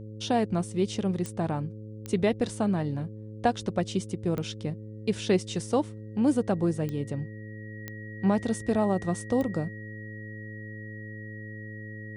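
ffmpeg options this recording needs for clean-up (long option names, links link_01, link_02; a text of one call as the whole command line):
ffmpeg -i in.wav -af "adeclick=threshold=4,bandreject=frequency=107.5:width_type=h:width=4,bandreject=frequency=215:width_type=h:width=4,bandreject=frequency=322.5:width_type=h:width=4,bandreject=frequency=430:width_type=h:width=4,bandreject=frequency=537.5:width_type=h:width=4,bandreject=frequency=1900:width=30" out.wav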